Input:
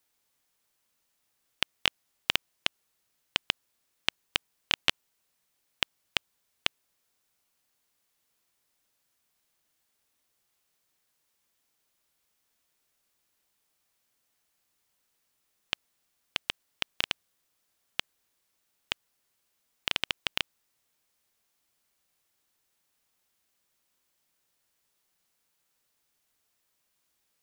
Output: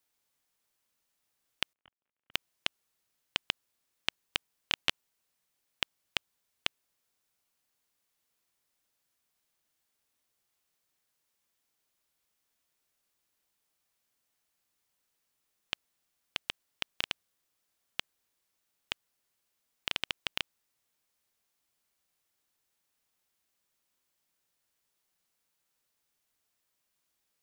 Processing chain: 1.73–2.34 CVSD 16 kbps; gain -4 dB

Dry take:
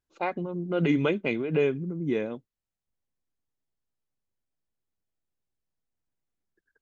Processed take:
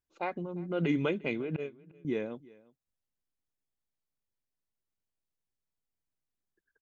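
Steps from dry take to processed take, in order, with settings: 1.56–2.05 gate -20 dBFS, range -23 dB; echo 0.351 s -23 dB; gain -5 dB

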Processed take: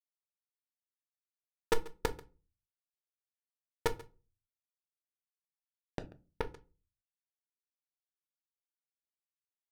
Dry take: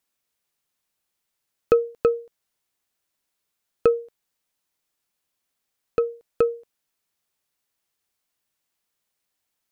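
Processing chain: half-wave gain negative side -7 dB; bell 510 Hz +4 dB 2.6 oct; comb 1 ms, depth 50%; Schmitt trigger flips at -22 dBFS; tremolo 2.4 Hz, depth 28%; echo 0.138 s -20.5 dB; reverb RT60 0.35 s, pre-delay 6 ms, DRR 9 dB; low-pass opened by the level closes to 1100 Hz, open at -46 dBFS; 6.06–6.54 decimation joined by straight lines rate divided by 6×; gain +9.5 dB

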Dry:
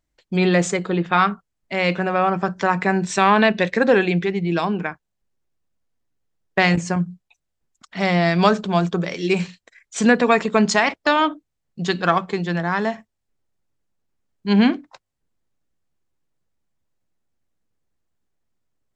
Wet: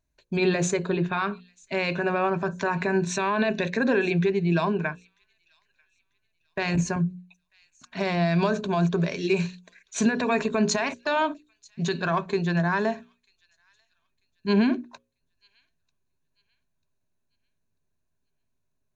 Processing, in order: ripple EQ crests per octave 1.5, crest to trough 9 dB; limiter -11 dBFS, peak gain reduction 10.5 dB; low shelf 270 Hz +5 dB; notches 60/120/180/240/300/360/420/480/540 Hz; on a send: thin delay 0.942 s, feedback 32%, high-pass 3100 Hz, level -23.5 dB; on the sum: gain -4 dB

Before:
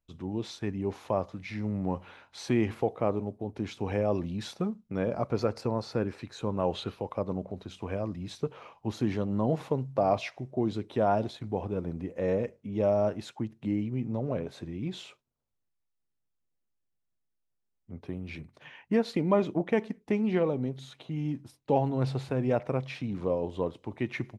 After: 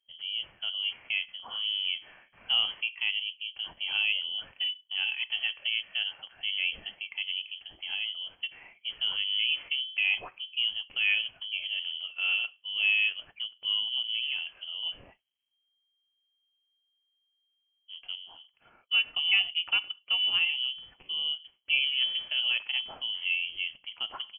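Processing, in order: harmonic-percussive split percussive -5 dB; inverted band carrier 3200 Hz; 18.15–18.97 upward expander 1.5:1, over -39 dBFS

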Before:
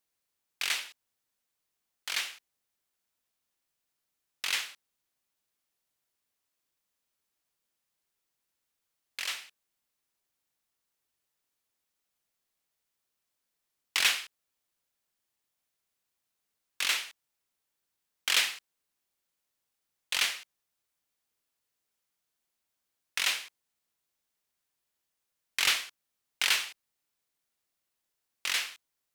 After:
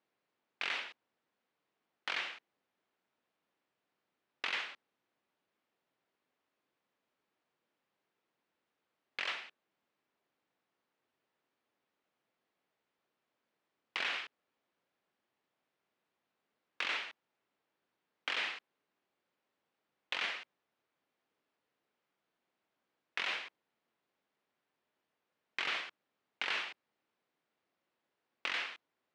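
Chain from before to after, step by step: tilt -2.5 dB/oct; limiter -24 dBFS, peak gain reduction 10.5 dB; compressor 2.5:1, threshold -39 dBFS, peak gain reduction 6 dB; BPF 250–3200 Hz; gain +6.5 dB

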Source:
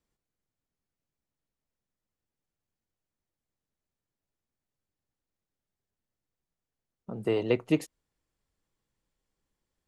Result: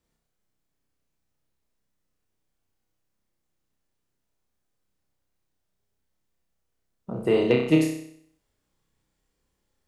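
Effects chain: flutter echo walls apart 5.4 m, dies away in 0.64 s; hard clip -12.5 dBFS, distortion -37 dB; gain +4 dB

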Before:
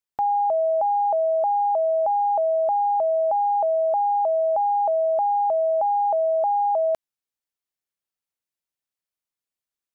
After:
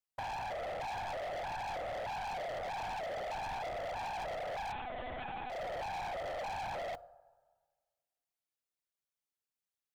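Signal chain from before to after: tracing distortion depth 0.29 ms; whisperiser; two-slope reverb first 0.42 s, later 1.6 s, from -17 dB, DRR 18 dB; overloaded stage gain 27 dB; 4.72–5.5 monotone LPC vocoder at 8 kHz 250 Hz; compressor 4:1, threshold -35 dBFS, peak gain reduction 9 dB; gain -5 dB

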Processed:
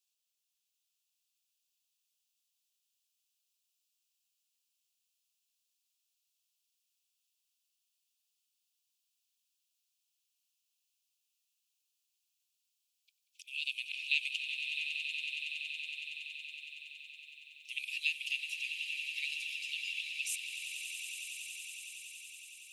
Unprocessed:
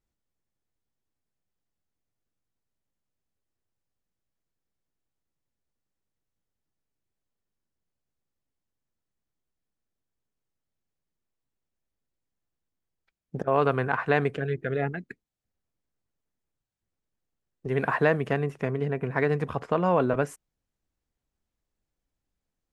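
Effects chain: steep high-pass 2500 Hz 96 dB/oct; on a send: swelling echo 93 ms, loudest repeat 8, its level -11 dB; on the sum: gain +9 dB

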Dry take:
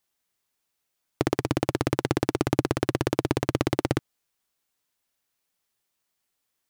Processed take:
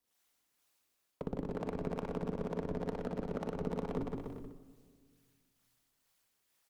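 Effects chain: formant sharpening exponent 1.5; resonant low shelf 110 Hz -8.5 dB, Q 1.5; notches 50/100/150/200/250 Hz; reverse; compressor 8:1, threshold -31 dBFS, peak gain reduction 14.5 dB; reverse; ring modulator 130 Hz; one-sided clip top -37.5 dBFS, bottom -26 dBFS; harmonic tremolo 2.2 Hz, depth 70%, crossover 430 Hz; bouncing-ball echo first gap 0.16 s, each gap 0.8×, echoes 5; on a send at -11.5 dB: reverb RT60 1.8 s, pre-delay 9 ms; on the sum: gain +6 dB

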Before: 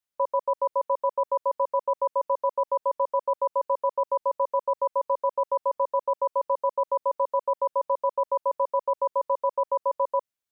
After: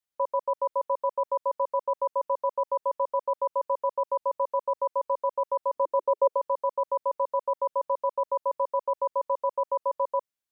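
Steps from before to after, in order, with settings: 5.75–6.35 bell 290 Hz -> 510 Hz +11.5 dB 0.79 oct; gain -2 dB

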